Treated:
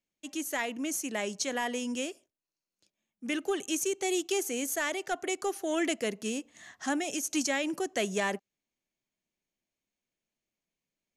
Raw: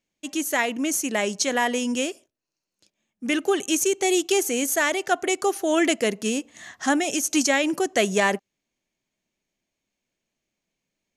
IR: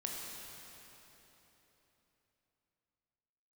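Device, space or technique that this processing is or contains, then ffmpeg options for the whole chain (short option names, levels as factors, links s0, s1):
one-band saturation: -filter_complex "[0:a]acrossover=split=430|2000[s0][s1][s2];[s1]asoftclip=type=tanh:threshold=0.141[s3];[s0][s3][s2]amix=inputs=3:normalize=0,volume=0.376"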